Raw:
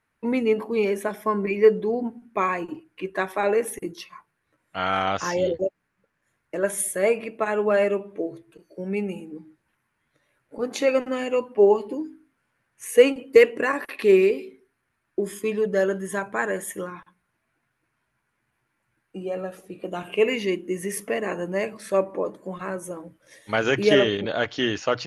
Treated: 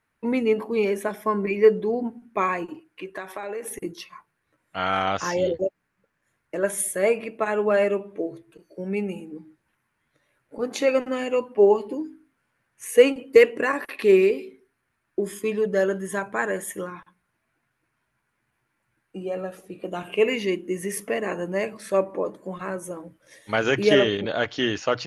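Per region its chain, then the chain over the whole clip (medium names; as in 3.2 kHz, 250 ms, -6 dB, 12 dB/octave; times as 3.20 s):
2.66–3.71 s: bass shelf 240 Hz -7 dB + compression 5:1, threshold -29 dBFS
whole clip: none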